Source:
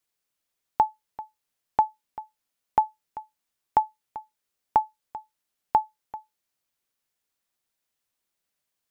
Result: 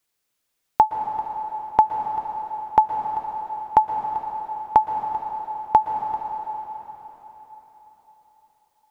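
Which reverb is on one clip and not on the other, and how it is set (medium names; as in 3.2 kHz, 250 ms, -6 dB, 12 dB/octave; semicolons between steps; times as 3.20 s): plate-style reverb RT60 4.3 s, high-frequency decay 1×, pre-delay 105 ms, DRR 4.5 dB; trim +5.5 dB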